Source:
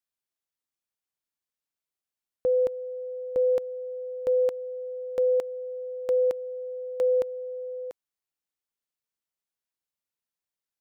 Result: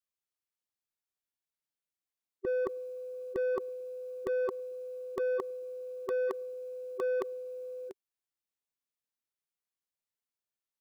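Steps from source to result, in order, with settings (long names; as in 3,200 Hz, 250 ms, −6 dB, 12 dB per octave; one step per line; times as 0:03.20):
dynamic equaliser 990 Hz, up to +4 dB, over −35 dBFS, Q 0.71
soft clipping −21.5 dBFS, distortion −14 dB
formants moved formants −5 semitones
level −5 dB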